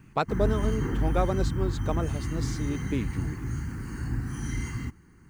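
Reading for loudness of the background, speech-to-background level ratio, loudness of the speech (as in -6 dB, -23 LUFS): -31.5 LUFS, -0.5 dB, -32.0 LUFS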